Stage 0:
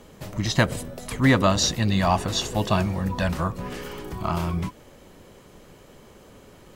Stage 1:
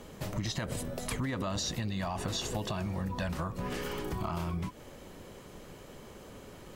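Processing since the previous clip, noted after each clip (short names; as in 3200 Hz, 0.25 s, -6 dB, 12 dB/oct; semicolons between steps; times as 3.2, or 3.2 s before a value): limiter -16.5 dBFS, peak gain reduction 11 dB; compressor, threshold -31 dBFS, peak gain reduction 10 dB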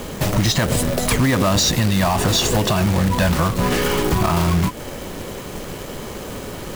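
sine folder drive 7 dB, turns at -19 dBFS; companded quantiser 4-bit; gain +7 dB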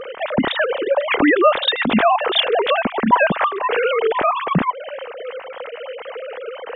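sine-wave speech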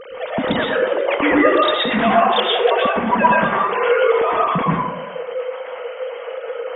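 plate-style reverb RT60 0.81 s, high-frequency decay 0.45×, pre-delay 0.1 s, DRR -5 dB; gain -5.5 dB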